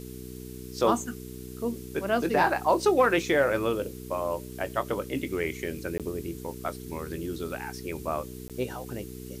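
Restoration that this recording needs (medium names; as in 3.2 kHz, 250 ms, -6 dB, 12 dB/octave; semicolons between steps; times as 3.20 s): de-hum 62.5 Hz, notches 7; interpolate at 5.98/8.48 s, 17 ms; noise reduction 30 dB, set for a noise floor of -41 dBFS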